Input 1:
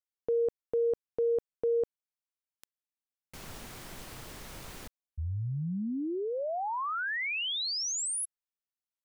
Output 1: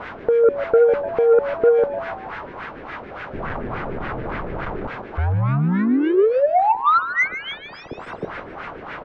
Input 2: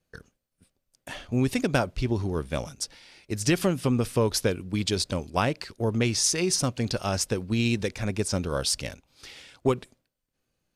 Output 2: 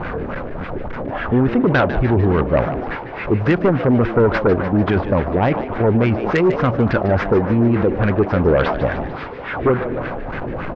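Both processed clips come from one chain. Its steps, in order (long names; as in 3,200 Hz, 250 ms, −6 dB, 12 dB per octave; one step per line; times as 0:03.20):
linear delta modulator 64 kbit/s, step −34 dBFS
low-pass filter 3,200 Hz 12 dB per octave
notch filter 1,800 Hz, Q 21
in parallel at −2 dB: compressor whose output falls as the input rises −29 dBFS, ratio −0.5
on the sum: auto-filter low-pass sine 3.5 Hz 390–1,800 Hz
sine wavefolder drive 4 dB, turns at −9.5 dBFS
on a send: echo with shifted repeats 149 ms, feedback 56%, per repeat +100 Hz, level −12 dB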